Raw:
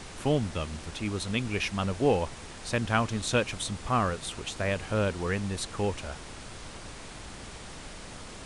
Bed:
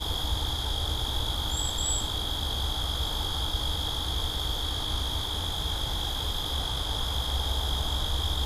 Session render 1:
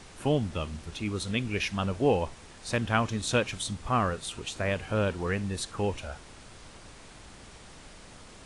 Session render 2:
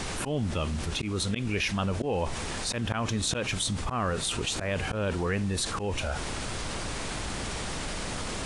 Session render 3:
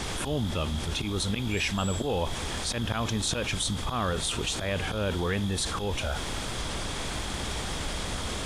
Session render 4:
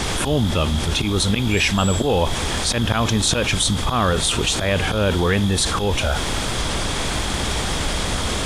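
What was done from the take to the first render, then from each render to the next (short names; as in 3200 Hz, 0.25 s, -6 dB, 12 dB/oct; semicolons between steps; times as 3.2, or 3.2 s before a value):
noise print and reduce 6 dB
auto swell 0.186 s; fast leveller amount 70%
add bed -10 dB
gain +10 dB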